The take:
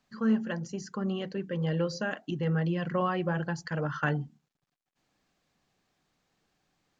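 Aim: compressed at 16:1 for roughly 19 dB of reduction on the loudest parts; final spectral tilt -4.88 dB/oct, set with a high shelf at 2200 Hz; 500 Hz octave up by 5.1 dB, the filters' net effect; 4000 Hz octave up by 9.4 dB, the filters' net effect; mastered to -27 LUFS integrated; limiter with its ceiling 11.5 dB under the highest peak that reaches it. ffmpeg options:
-af "equalizer=f=500:t=o:g=5.5,highshelf=f=2.2k:g=6,equalizer=f=4k:t=o:g=7.5,acompressor=threshold=-39dB:ratio=16,volume=18.5dB,alimiter=limit=-17.5dB:level=0:latency=1"

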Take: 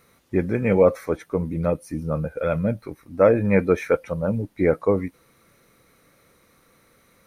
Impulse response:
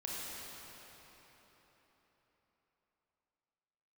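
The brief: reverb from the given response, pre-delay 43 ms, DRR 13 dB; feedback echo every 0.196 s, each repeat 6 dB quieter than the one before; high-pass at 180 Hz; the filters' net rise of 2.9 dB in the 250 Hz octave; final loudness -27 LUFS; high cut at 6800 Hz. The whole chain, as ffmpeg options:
-filter_complex "[0:a]highpass=180,lowpass=6.8k,equalizer=f=250:t=o:g=6,aecho=1:1:196|392|588|784|980|1176:0.501|0.251|0.125|0.0626|0.0313|0.0157,asplit=2[a][b];[1:a]atrim=start_sample=2205,adelay=43[c];[b][c]afir=irnorm=-1:irlink=0,volume=-15dB[d];[a][d]amix=inputs=2:normalize=0,volume=-7dB"

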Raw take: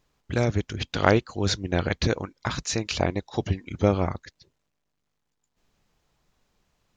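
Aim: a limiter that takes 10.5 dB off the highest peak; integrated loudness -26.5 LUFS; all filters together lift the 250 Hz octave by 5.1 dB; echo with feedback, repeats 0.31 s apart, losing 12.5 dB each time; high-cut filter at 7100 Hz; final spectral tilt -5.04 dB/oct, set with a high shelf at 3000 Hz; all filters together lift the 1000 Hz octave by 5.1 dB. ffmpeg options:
-af "lowpass=7.1k,equalizer=f=250:t=o:g=6.5,equalizer=f=1k:t=o:g=6,highshelf=f=3k:g=5,alimiter=limit=-9dB:level=0:latency=1,aecho=1:1:310|620|930:0.237|0.0569|0.0137,volume=-1.5dB"

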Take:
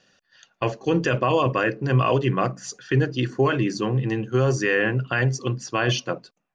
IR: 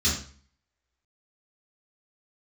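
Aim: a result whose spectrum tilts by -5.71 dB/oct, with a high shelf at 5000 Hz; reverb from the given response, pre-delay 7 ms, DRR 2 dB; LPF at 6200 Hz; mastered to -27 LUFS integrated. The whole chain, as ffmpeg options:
-filter_complex "[0:a]lowpass=6.2k,highshelf=f=5k:g=5.5,asplit=2[a][b];[1:a]atrim=start_sample=2205,adelay=7[c];[b][c]afir=irnorm=-1:irlink=0,volume=-13dB[d];[a][d]amix=inputs=2:normalize=0,volume=-8.5dB"

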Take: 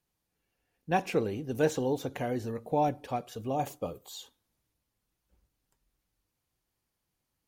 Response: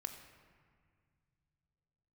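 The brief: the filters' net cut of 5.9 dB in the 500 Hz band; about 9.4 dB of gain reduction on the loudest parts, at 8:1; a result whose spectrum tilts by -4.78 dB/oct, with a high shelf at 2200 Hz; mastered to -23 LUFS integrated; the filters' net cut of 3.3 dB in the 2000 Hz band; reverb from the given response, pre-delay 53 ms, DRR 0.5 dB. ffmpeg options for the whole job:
-filter_complex "[0:a]equalizer=f=500:t=o:g=-7,equalizer=f=2k:t=o:g=-8,highshelf=f=2.2k:g=6.5,acompressor=threshold=-35dB:ratio=8,asplit=2[a][b];[1:a]atrim=start_sample=2205,adelay=53[c];[b][c]afir=irnorm=-1:irlink=0,volume=1.5dB[d];[a][d]amix=inputs=2:normalize=0,volume=15dB"

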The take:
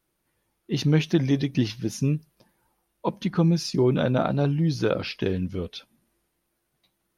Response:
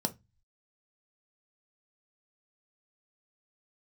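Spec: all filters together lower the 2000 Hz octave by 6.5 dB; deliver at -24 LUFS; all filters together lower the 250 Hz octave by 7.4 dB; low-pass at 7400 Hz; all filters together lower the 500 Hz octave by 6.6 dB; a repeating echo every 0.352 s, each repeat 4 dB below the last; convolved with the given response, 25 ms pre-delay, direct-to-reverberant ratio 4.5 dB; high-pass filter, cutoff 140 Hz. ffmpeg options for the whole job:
-filter_complex "[0:a]highpass=140,lowpass=7.4k,equalizer=f=250:t=o:g=-8.5,equalizer=f=500:t=o:g=-5,equalizer=f=2k:t=o:g=-9,aecho=1:1:352|704|1056|1408|1760|2112|2464|2816|3168:0.631|0.398|0.25|0.158|0.0994|0.0626|0.0394|0.0249|0.0157,asplit=2[a][b];[1:a]atrim=start_sample=2205,adelay=25[c];[b][c]afir=irnorm=-1:irlink=0,volume=-9dB[d];[a][d]amix=inputs=2:normalize=0,volume=1.5dB"

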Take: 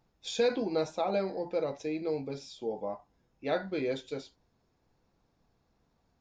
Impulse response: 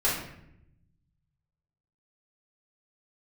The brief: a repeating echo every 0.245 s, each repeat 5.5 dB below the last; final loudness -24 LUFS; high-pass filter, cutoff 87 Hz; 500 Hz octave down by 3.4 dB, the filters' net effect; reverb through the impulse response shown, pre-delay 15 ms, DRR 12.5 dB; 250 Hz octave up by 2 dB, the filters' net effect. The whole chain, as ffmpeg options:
-filter_complex "[0:a]highpass=87,equalizer=f=250:t=o:g=4.5,equalizer=f=500:t=o:g=-5,aecho=1:1:245|490|735|980|1225|1470|1715:0.531|0.281|0.149|0.079|0.0419|0.0222|0.0118,asplit=2[a][b];[1:a]atrim=start_sample=2205,adelay=15[c];[b][c]afir=irnorm=-1:irlink=0,volume=-24.5dB[d];[a][d]amix=inputs=2:normalize=0,volume=9.5dB"

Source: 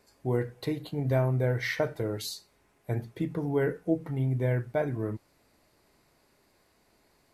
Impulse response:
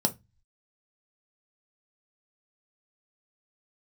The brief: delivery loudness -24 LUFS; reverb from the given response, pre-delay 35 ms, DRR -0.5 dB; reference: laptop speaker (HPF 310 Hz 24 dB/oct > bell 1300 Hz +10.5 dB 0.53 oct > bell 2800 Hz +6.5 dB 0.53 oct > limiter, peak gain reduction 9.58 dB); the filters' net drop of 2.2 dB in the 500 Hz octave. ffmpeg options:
-filter_complex "[0:a]equalizer=f=500:t=o:g=-3,asplit=2[a][b];[1:a]atrim=start_sample=2205,adelay=35[c];[b][c]afir=irnorm=-1:irlink=0,volume=-8dB[d];[a][d]amix=inputs=2:normalize=0,highpass=f=310:w=0.5412,highpass=f=310:w=1.3066,equalizer=f=1.3k:t=o:w=0.53:g=10.5,equalizer=f=2.8k:t=o:w=0.53:g=6.5,volume=7.5dB,alimiter=limit=-13dB:level=0:latency=1"

